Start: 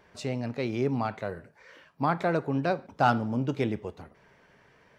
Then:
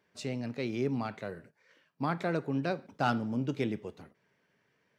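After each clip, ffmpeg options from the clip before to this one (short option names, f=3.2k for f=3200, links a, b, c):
-af "agate=range=-9dB:threshold=-50dB:ratio=16:detection=peak,highpass=130,equalizer=f=840:t=o:w=1.7:g=-6.5,volume=-1.5dB"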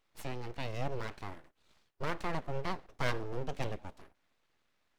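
-af "aeval=exprs='abs(val(0))':c=same,volume=-2dB"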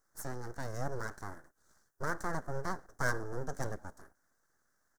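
-af "firequalizer=gain_entry='entry(1000,0);entry(1600,8);entry(2500,-23);entry(5900,9)':delay=0.05:min_phase=1,volume=-1dB"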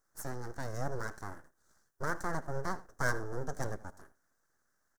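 -filter_complex "[0:a]asplit=2[a][b];[b]aeval=exprs='sgn(val(0))*max(abs(val(0))-0.00188,0)':c=same,volume=-11dB[c];[a][c]amix=inputs=2:normalize=0,aecho=1:1:81:0.112,volume=-1.5dB"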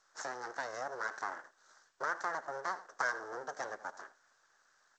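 -af "acompressor=threshold=-39dB:ratio=4,highpass=710,lowpass=5.6k,volume=11.5dB" -ar 16000 -c:a g722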